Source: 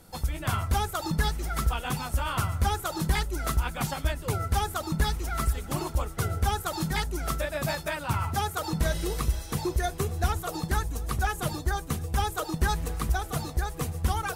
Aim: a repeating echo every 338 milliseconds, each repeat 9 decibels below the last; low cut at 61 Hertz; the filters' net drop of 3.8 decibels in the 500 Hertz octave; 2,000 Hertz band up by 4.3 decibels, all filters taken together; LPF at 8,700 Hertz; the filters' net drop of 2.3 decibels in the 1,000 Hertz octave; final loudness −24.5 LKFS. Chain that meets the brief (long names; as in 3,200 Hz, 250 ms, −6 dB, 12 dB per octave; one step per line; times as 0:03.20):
high-pass filter 61 Hz
low-pass filter 8,700 Hz
parametric band 500 Hz −4.5 dB
parametric band 1,000 Hz −4 dB
parametric band 2,000 Hz +7.5 dB
repeating echo 338 ms, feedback 35%, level −9 dB
level +5.5 dB